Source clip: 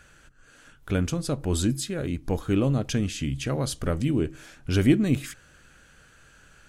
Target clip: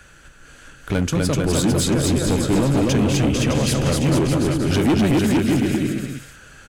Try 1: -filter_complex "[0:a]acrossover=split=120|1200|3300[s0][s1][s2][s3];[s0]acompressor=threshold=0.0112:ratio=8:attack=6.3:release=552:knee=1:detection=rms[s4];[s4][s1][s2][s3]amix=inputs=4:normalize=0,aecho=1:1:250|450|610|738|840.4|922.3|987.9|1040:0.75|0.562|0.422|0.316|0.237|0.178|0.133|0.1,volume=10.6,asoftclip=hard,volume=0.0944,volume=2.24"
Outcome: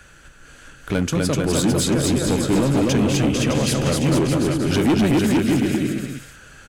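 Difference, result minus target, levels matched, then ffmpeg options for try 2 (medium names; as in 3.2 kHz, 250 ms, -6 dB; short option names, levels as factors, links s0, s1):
compression: peak gain reduction +7 dB
-filter_complex "[0:a]acrossover=split=120|1200|3300[s0][s1][s2][s3];[s0]acompressor=threshold=0.0282:ratio=8:attack=6.3:release=552:knee=1:detection=rms[s4];[s4][s1][s2][s3]amix=inputs=4:normalize=0,aecho=1:1:250|450|610|738|840.4|922.3|987.9|1040:0.75|0.562|0.422|0.316|0.237|0.178|0.133|0.1,volume=10.6,asoftclip=hard,volume=0.0944,volume=2.24"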